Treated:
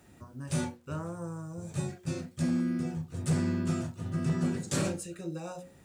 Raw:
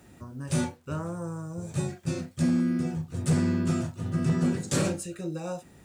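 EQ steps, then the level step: notches 60/120/180/240/300/360/420/480/540 Hz; -3.5 dB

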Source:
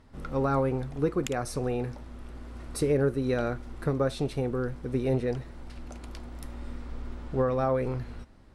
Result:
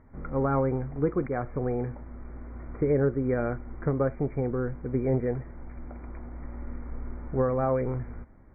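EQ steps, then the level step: brick-wall FIR low-pass 2400 Hz; air absorption 360 m; +1.5 dB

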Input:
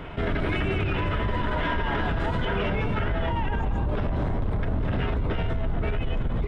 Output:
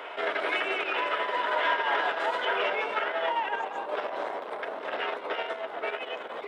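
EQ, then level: HPF 480 Hz 24 dB/oct; +3.0 dB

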